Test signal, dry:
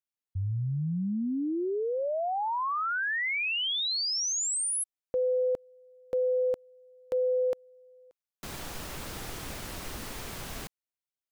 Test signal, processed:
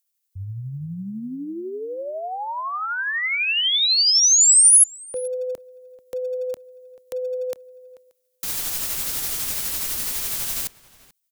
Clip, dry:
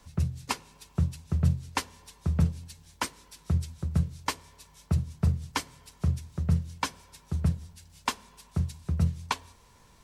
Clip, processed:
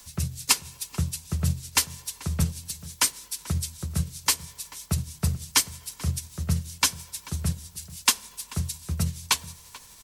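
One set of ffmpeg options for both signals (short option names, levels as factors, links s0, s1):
-filter_complex "[0:a]tremolo=f=12:d=0.29,acrossover=split=200|1500[s0][s1][s2];[s1]asoftclip=type=hard:threshold=0.0631[s3];[s0][s3][s2]amix=inputs=3:normalize=0,crystalizer=i=7:c=0,asplit=2[s4][s5];[s5]adelay=437.3,volume=0.126,highshelf=f=4000:g=-9.84[s6];[s4][s6]amix=inputs=2:normalize=0"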